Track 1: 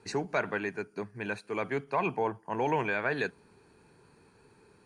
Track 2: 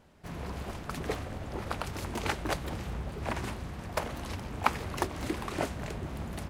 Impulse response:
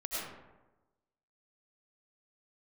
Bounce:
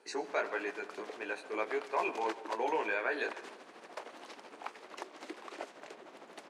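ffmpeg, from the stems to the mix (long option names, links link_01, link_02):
-filter_complex "[0:a]flanger=delay=16.5:depth=2.3:speed=1.6,volume=-1dB,asplit=2[link_01][link_02];[link_02]volume=-17dB[link_03];[1:a]lowpass=7200,acompressor=threshold=-37dB:ratio=2,tremolo=f=13:d=0.54,volume=-3dB[link_04];[2:a]atrim=start_sample=2205[link_05];[link_03][link_05]afir=irnorm=-1:irlink=0[link_06];[link_01][link_04][link_06]amix=inputs=3:normalize=0,highpass=frequency=330:width=0.5412,highpass=frequency=330:width=1.3066"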